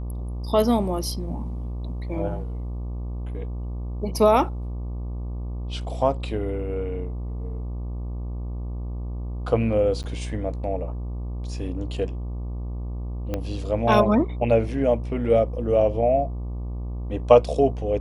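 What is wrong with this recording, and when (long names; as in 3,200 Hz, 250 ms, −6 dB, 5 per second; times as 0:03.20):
mains buzz 60 Hz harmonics 20 −30 dBFS
0:10.03–0:10.04: drop-out 9.1 ms
0:13.34: click −14 dBFS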